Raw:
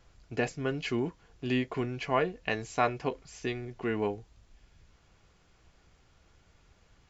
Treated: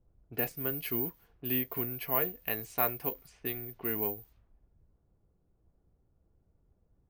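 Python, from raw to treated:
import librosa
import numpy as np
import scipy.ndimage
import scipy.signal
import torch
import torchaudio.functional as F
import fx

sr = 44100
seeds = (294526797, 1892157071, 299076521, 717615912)

y = (np.kron(scipy.signal.resample_poly(x, 1, 3), np.eye(3)[0]) * 3)[:len(x)]
y = fx.env_lowpass(y, sr, base_hz=370.0, full_db=-29.5)
y = y * 10.0 ** (-6.0 / 20.0)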